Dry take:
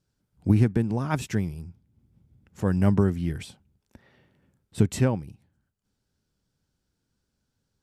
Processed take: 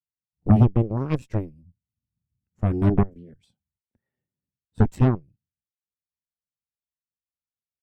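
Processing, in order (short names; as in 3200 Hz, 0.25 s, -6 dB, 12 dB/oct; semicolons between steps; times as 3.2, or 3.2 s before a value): 3.03–3.43 level quantiser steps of 16 dB; added harmonics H 8 -7 dB, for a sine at -6.5 dBFS; spectral expander 1.5:1; gain -1 dB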